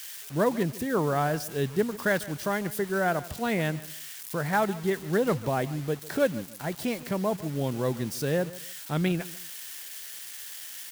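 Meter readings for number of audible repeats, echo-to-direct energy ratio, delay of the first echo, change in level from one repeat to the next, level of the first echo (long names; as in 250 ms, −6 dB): 2, −17.5 dB, 148 ms, −12.0 dB, −18.0 dB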